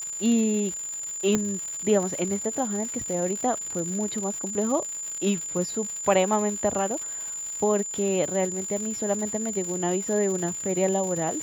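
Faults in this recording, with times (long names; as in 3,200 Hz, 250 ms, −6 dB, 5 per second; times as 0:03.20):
surface crackle 180 per second −31 dBFS
whistle 7,100 Hz −31 dBFS
0:01.35: click −10 dBFS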